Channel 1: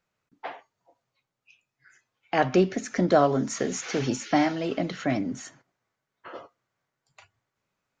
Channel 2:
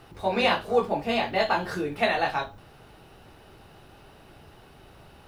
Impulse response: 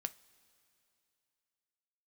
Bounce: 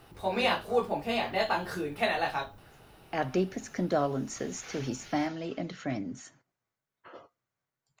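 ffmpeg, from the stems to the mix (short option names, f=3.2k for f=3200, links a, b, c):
-filter_complex "[0:a]lowshelf=f=150:g=5.5,adelay=800,volume=-8.5dB[a];[1:a]volume=-4.5dB[b];[a][b]amix=inputs=2:normalize=0,highshelf=f=10k:g=8.5"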